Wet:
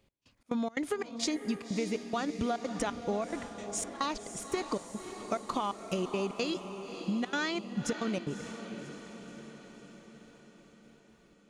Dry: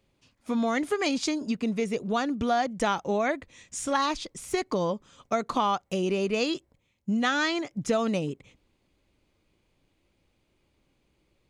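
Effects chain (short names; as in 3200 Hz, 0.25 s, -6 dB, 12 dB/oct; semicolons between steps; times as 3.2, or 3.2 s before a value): step gate "x..xx.xx.xx" 176 bpm -24 dB; compressor, threshold -29 dBFS, peak gain reduction 8.5 dB; diffused feedback echo 0.571 s, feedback 59%, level -9.5 dB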